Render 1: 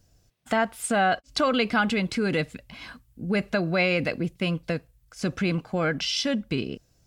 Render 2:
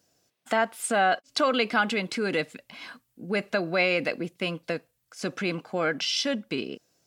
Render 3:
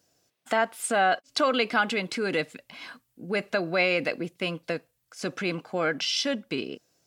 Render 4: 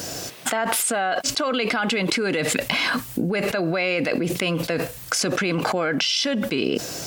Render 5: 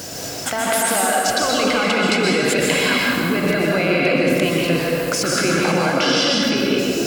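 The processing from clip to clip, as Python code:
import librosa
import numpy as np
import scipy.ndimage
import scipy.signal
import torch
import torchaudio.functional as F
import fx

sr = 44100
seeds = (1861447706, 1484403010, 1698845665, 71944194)

y1 = scipy.signal.sosfilt(scipy.signal.butter(2, 270.0, 'highpass', fs=sr, output='sos'), x)
y2 = fx.peak_eq(y1, sr, hz=210.0, db=-3.5, octaves=0.24)
y3 = fx.env_flatten(y2, sr, amount_pct=100)
y3 = y3 * librosa.db_to_amplitude(-2.5)
y4 = fx.rev_plate(y3, sr, seeds[0], rt60_s=2.5, hf_ratio=0.65, predelay_ms=110, drr_db=-4.0)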